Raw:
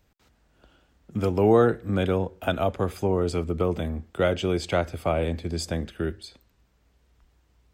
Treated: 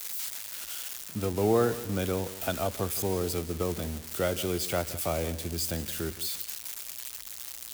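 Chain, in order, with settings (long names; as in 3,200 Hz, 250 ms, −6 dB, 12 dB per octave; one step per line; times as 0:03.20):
spike at every zero crossing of −19.5 dBFS
feedback echo at a low word length 169 ms, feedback 35%, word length 7 bits, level −15 dB
level −6 dB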